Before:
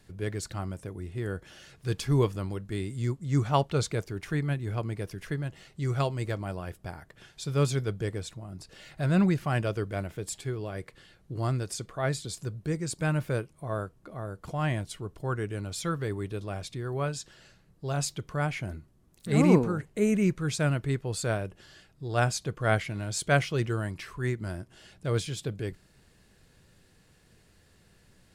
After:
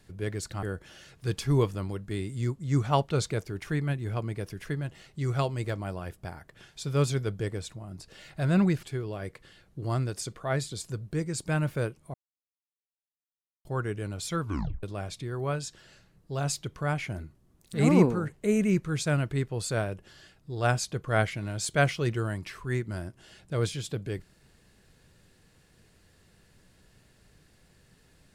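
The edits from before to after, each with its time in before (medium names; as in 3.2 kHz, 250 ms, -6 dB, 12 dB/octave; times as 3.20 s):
0.63–1.24 s: delete
9.44–10.36 s: delete
13.67–15.18 s: mute
15.93 s: tape stop 0.43 s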